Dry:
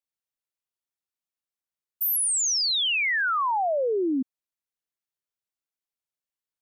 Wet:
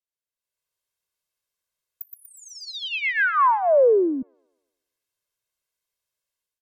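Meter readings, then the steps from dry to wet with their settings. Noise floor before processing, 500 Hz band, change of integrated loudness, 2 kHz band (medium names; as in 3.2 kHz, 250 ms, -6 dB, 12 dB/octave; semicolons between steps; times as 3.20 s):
under -85 dBFS, +8.5 dB, +3.0 dB, +2.0 dB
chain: low-pass that closes with the level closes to 1.4 kHz, closed at -22.5 dBFS; comb 1.9 ms, depth 61%; level rider gain up to 12.5 dB; feedback echo behind a high-pass 120 ms, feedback 46%, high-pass 2.3 kHz, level -5.5 dB; trim -6.5 dB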